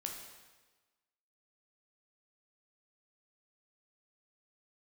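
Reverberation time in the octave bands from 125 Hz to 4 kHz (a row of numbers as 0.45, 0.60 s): 1.2, 1.2, 1.3, 1.3, 1.2, 1.2 s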